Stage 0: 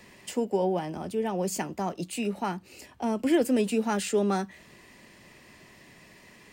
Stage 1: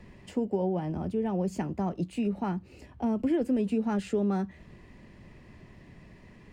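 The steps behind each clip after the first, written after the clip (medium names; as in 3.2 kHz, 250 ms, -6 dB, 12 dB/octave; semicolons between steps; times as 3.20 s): RIAA curve playback; compression 2.5:1, threshold -22 dBFS, peak gain reduction 6 dB; trim -3.5 dB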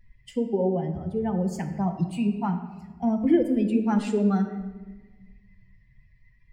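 expander on every frequency bin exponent 2; simulated room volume 900 m³, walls mixed, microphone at 0.78 m; trim +7 dB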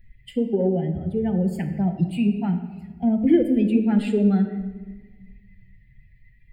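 in parallel at -12 dB: saturation -18.5 dBFS, distortion -15 dB; on the sum: static phaser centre 2.6 kHz, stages 4; trim +3 dB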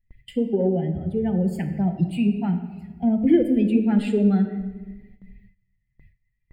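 gate with hold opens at -39 dBFS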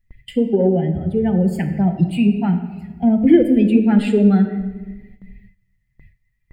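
peaking EQ 1.5 kHz +2.5 dB 1.5 oct; trim +5.5 dB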